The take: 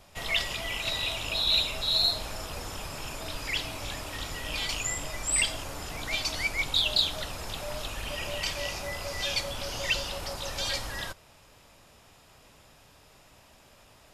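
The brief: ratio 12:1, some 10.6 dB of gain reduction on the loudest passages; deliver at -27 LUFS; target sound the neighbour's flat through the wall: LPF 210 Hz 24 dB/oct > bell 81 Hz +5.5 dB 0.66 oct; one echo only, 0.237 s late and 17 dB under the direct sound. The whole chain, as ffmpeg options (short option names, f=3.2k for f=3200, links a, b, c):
-af "acompressor=threshold=-31dB:ratio=12,lowpass=f=210:w=0.5412,lowpass=f=210:w=1.3066,equalizer=f=81:t=o:w=0.66:g=5.5,aecho=1:1:237:0.141,volume=18.5dB"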